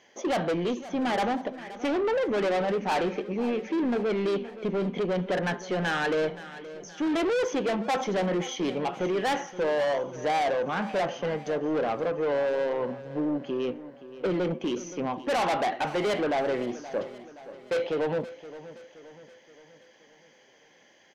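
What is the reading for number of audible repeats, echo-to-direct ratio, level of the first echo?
4, −14.0 dB, −15.5 dB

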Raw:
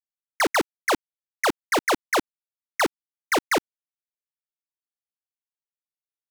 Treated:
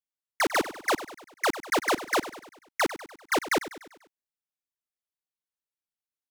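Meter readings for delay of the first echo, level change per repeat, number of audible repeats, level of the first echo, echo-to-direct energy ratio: 98 ms, −5.5 dB, 4, −14.0 dB, −12.5 dB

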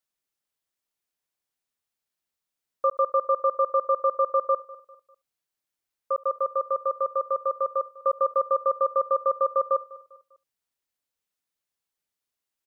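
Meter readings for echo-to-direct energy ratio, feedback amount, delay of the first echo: −18.0 dB, repeats not evenly spaced, 72 ms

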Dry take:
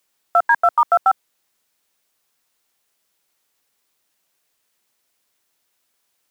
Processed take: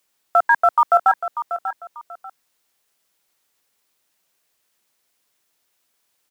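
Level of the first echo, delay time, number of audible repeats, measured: −11.0 dB, 591 ms, 2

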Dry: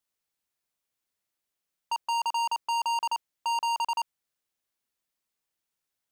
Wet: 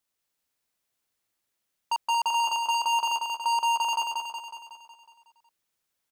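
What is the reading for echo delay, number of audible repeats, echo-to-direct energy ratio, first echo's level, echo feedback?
184 ms, 7, −2.5 dB, −4.0 dB, 57%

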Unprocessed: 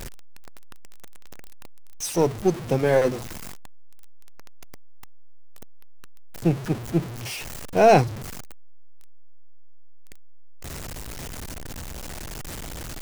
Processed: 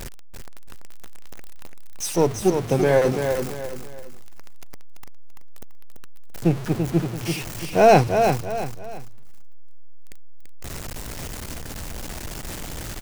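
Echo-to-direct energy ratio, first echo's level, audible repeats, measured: −5.5 dB, −6.0 dB, 3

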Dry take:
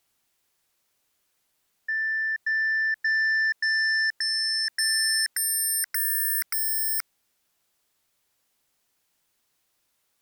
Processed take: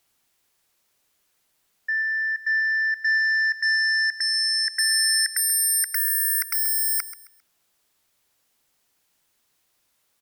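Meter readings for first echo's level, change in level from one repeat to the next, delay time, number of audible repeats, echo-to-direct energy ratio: −15.0 dB, −10.0 dB, 133 ms, 2, −14.5 dB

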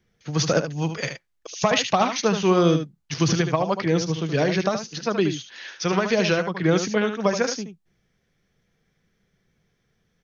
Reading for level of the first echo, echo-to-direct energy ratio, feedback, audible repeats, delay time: −8.5 dB, −8.5 dB, repeats not evenly spaced, 1, 75 ms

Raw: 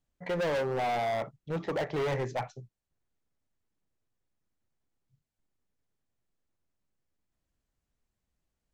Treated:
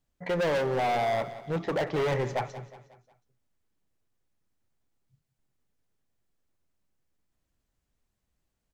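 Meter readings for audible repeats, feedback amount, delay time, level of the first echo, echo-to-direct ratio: 4, 46%, 181 ms, −14.5 dB, −13.5 dB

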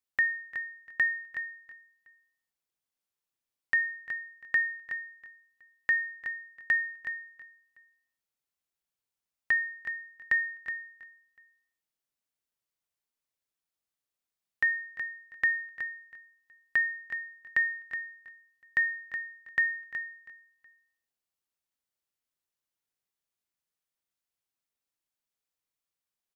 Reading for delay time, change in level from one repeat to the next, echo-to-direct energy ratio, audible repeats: 347 ms, −7.0 dB, −17.5 dB, 2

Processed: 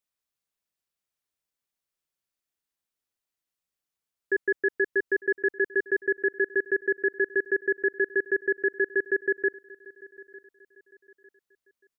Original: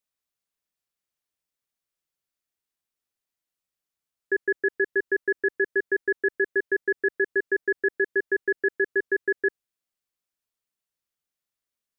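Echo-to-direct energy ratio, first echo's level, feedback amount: −20.5 dB, −21.0 dB, 35%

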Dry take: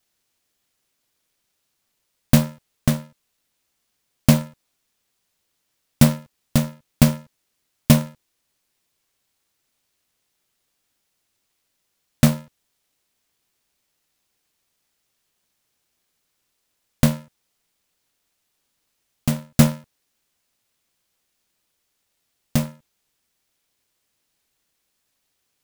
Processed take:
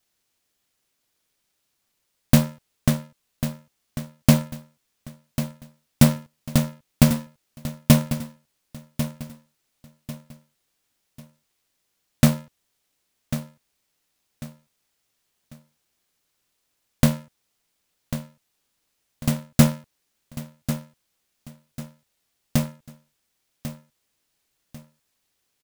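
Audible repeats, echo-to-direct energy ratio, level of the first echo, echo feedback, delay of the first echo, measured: 3, −11.0 dB, −11.5 dB, 33%, 1,095 ms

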